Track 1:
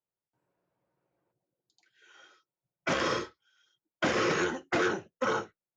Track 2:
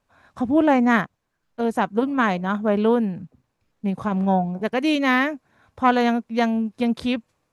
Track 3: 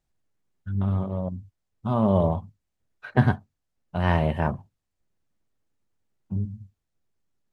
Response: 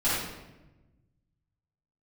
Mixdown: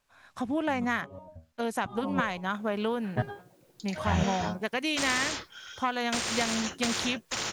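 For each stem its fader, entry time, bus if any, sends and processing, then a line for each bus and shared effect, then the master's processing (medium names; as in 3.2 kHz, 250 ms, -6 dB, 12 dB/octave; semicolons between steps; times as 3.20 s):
-7.5 dB, 2.10 s, no send, level rider gain up to 12 dB; spectrum-flattening compressor 10:1
-2.5 dB, 0.00 s, no send, tilt shelf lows -6.5 dB, about 1.1 kHz; compression 4:1, threshold -24 dBFS, peak gain reduction 10 dB
+3.0 dB, 0.00 s, no send, reverb removal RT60 0.64 s; resonator arpeggio 5.9 Hz 80–530 Hz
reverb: none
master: none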